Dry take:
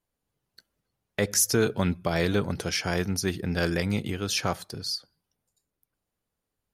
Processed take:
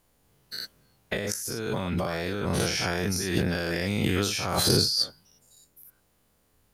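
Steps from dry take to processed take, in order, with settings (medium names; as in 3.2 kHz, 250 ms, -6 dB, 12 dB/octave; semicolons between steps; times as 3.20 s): every event in the spectrogram widened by 120 ms; treble shelf 12 kHz +3 dB; compressor with a negative ratio -31 dBFS, ratio -1; trim +3 dB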